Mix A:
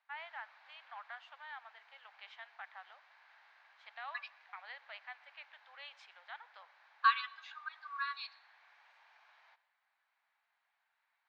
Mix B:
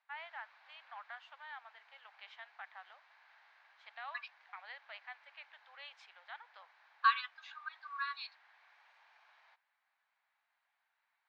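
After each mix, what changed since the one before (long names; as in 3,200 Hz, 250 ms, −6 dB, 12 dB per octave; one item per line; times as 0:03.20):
reverb: off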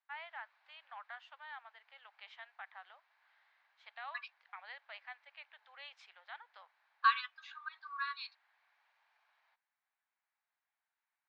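background −9.5 dB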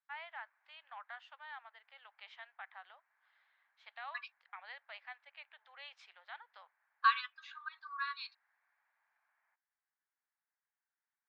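background: add transistor ladder low-pass 2,200 Hz, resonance 40%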